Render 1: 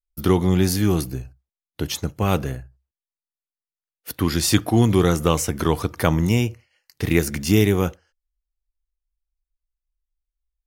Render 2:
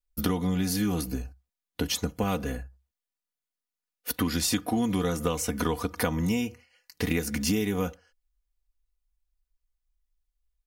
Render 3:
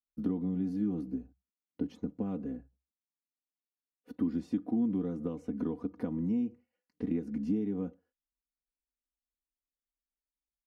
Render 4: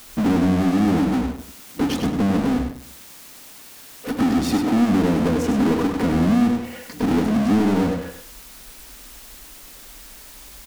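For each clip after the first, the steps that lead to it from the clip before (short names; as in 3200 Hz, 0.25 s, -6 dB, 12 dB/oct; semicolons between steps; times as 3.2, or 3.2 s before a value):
comb 4.1 ms, depth 73%; compressor, threshold -24 dBFS, peak gain reduction 12.5 dB
band-pass 260 Hz, Q 2.2; gain -1 dB
power-law curve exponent 0.35; feedback echo 0.1 s, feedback 24%, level -6.5 dB; gain +7 dB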